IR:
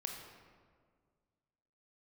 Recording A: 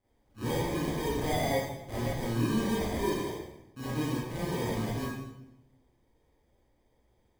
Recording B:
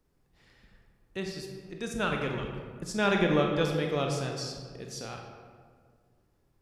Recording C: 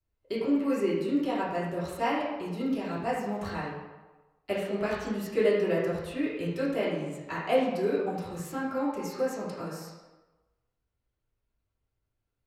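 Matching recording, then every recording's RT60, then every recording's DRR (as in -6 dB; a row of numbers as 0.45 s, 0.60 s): B; 0.90 s, 1.8 s, 1.2 s; -10.0 dB, 1.5 dB, -9.5 dB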